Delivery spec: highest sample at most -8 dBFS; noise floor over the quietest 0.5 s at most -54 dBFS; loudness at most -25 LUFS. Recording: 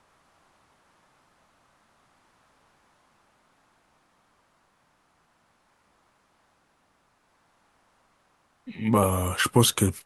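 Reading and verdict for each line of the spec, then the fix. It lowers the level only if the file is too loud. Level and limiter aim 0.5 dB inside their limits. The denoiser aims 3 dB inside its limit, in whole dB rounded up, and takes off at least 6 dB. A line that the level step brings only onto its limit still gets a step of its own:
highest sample -5.5 dBFS: fail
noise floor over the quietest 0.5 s -68 dBFS: pass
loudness -23.0 LUFS: fail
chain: trim -2.5 dB; peak limiter -8.5 dBFS

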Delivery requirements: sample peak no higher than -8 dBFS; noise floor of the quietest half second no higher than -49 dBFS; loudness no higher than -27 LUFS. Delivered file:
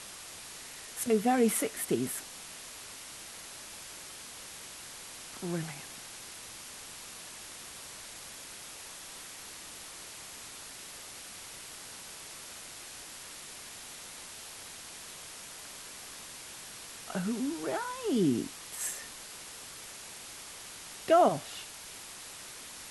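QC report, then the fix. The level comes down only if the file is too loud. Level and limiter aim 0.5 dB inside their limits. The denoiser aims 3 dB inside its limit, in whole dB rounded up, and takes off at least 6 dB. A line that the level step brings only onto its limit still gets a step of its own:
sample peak -12.5 dBFS: pass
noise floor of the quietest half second -46 dBFS: fail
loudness -36.5 LUFS: pass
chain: noise reduction 6 dB, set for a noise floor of -46 dBFS

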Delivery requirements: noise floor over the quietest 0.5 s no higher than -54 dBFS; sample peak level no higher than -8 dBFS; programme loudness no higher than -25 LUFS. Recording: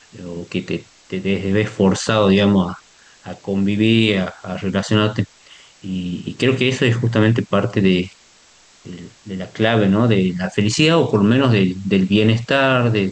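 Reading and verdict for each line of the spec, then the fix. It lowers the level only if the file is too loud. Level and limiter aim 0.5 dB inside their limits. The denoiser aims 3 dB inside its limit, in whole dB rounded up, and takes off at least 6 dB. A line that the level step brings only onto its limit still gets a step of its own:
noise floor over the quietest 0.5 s -50 dBFS: fail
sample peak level -4.0 dBFS: fail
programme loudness -17.5 LUFS: fail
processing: trim -8 dB

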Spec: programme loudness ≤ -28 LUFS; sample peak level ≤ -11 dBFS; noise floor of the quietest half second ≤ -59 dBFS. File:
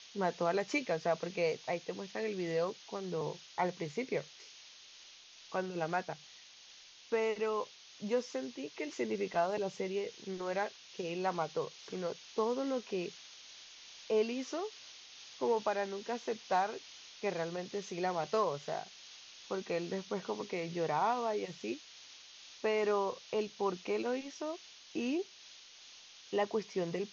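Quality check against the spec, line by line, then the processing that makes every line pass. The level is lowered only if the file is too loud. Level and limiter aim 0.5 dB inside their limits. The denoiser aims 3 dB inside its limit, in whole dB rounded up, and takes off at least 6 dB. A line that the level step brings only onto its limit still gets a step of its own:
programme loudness -36.5 LUFS: pass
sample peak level -20.0 dBFS: pass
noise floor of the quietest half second -57 dBFS: fail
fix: noise reduction 6 dB, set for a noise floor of -57 dBFS

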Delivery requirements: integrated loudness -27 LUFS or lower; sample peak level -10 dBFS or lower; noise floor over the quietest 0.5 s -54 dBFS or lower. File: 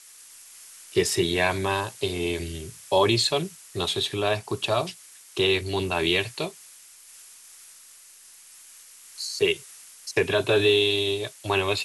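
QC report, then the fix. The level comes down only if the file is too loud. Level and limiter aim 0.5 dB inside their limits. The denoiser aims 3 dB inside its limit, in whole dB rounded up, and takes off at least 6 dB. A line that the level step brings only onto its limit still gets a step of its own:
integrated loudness -25.0 LUFS: fail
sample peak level -8.0 dBFS: fail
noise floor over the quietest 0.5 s -50 dBFS: fail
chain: noise reduction 6 dB, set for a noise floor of -50 dBFS; trim -2.5 dB

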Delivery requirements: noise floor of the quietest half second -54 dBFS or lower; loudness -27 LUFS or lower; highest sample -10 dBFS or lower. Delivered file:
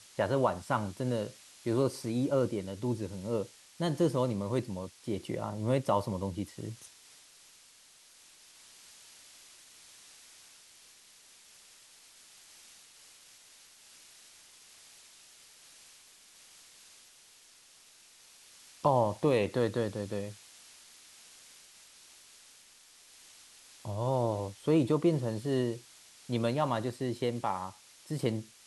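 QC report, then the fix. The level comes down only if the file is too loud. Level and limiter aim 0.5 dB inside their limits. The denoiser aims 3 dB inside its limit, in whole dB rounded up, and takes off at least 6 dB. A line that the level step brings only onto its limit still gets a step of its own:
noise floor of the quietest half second -59 dBFS: pass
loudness -32.5 LUFS: pass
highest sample -12.5 dBFS: pass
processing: none needed

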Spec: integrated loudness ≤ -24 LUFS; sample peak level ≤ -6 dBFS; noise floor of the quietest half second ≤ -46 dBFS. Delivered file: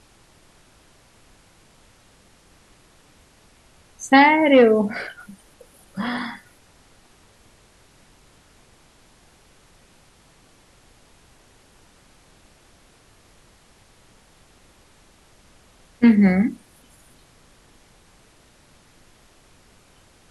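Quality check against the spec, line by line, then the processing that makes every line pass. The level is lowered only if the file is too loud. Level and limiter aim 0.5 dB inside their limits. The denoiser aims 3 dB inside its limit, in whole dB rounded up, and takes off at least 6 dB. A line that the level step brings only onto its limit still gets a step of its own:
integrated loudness -17.5 LUFS: fail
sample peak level -3.5 dBFS: fail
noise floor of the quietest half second -54 dBFS: pass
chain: trim -7 dB

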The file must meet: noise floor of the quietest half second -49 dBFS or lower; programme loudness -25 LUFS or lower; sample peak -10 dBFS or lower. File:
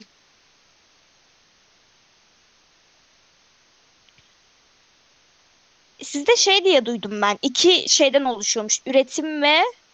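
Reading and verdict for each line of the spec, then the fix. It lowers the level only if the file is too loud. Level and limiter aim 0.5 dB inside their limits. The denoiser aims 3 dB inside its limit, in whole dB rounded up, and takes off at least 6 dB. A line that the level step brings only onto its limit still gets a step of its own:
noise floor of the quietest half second -58 dBFS: pass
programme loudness -18.0 LUFS: fail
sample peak -3.5 dBFS: fail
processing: trim -7.5 dB

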